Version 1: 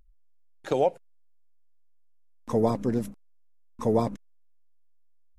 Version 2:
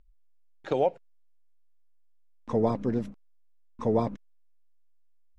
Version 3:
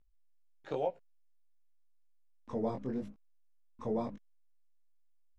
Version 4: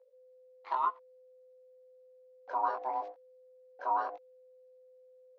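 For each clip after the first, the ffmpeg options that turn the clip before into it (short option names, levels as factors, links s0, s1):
-af "lowpass=4200,volume=0.841"
-af "flanger=delay=16:depth=7.4:speed=0.9,volume=0.501"
-af "aeval=exprs='val(0)*sin(2*PI*510*n/s)':c=same,highpass=f=500:w=0.5412,highpass=f=500:w=1.3066,equalizer=f=520:t=q:w=4:g=5,equalizer=f=960:t=q:w=4:g=6,equalizer=f=3000:t=q:w=4:g=-5,lowpass=f=4800:w=0.5412,lowpass=f=4800:w=1.3066,volume=1.78"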